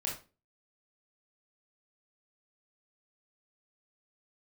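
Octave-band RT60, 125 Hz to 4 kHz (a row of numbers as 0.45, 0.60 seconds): 0.40, 0.40, 0.35, 0.30, 0.30, 0.25 seconds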